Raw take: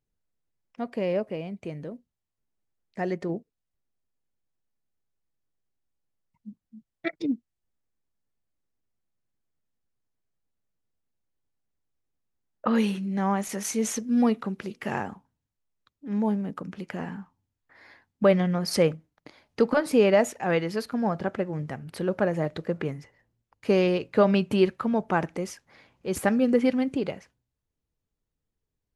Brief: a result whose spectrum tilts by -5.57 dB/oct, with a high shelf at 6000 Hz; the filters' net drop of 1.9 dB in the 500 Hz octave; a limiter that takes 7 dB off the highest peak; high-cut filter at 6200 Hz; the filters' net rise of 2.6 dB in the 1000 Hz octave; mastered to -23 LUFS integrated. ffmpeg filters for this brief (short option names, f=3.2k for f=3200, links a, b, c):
-af "lowpass=6.2k,equalizer=f=500:t=o:g=-3.5,equalizer=f=1k:t=o:g=4.5,highshelf=f=6k:g=6,volume=5.5dB,alimiter=limit=-9.5dB:level=0:latency=1"